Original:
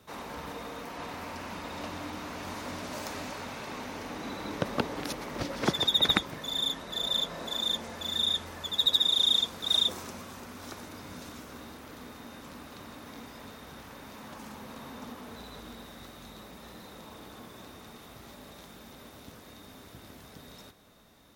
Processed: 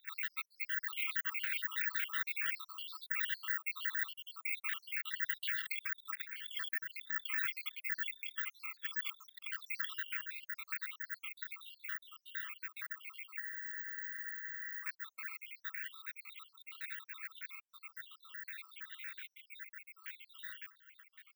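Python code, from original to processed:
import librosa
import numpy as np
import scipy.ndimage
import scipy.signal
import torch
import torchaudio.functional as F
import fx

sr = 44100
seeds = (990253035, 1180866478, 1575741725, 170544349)

y = fx.spec_dropout(x, sr, seeds[0], share_pct=72)
y = fx.dereverb_blind(y, sr, rt60_s=1.1)
y = fx.env_lowpass(y, sr, base_hz=2600.0, full_db=-32.5)
y = scipy.signal.sosfilt(scipy.signal.butter(8, 1600.0, 'highpass', fs=sr, output='sos'), y)
y = fx.peak_eq(y, sr, hz=6800.0, db=-10.0, octaves=1.9)
y = fx.over_compress(y, sr, threshold_db=-55.0, ratio=-1.0)
y = fx.air_absorb(y, sr, metres=380.0)
y = (np.kron(scipy.signal.resample_poly(y, 1, 2), np.eye(2)[0]) * 2)[:len(y)]
y = fx.spec_freeze(y, sr, seeds[1], at_s=13.42, hold_s=1.4)
y = F.gain(torch.from_numpy(y), 14.0).numpy()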